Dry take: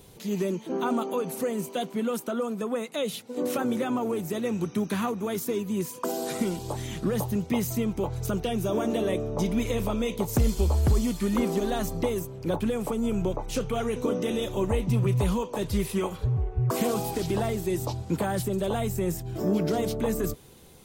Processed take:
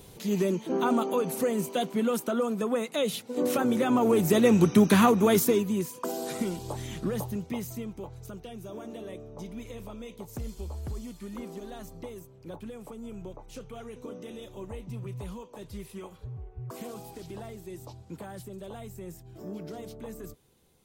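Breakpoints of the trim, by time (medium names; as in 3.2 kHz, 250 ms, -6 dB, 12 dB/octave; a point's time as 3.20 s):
3.75 s +1.5 dB
4.31 s +8.5 dB
5.37 s +8.5 dB
5.91 s -3 dB
7.03 s -3 dB
8.35 s -14 dB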